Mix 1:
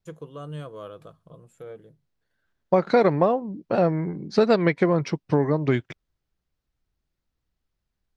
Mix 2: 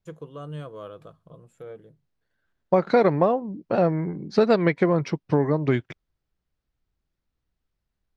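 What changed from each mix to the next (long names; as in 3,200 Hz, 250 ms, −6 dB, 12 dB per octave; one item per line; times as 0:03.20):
master: add high-shelf EQ 5,300 Hz −5.5 dB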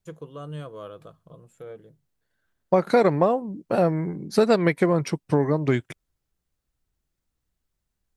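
second voice: remove low-pass filter 5,600 Hz 24 dB per octave
master: add high-shelf EQ 5,300 Hz +5.5 dB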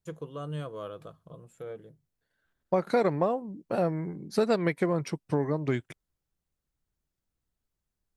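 second voice −6.5 dB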